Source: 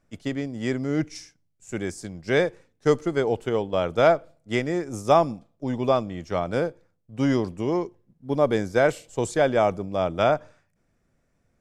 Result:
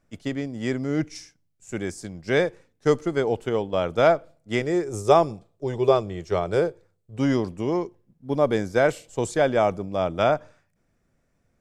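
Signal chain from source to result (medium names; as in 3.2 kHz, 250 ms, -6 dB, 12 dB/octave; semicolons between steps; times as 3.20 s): 4.61–7.19 s: graphic EQ with 31 bands 100 Hz +5 dB, 250 Hz -11 dB, 400 Hz +11 dB, 4 kHz +3 dB, 8 kHz +5 dB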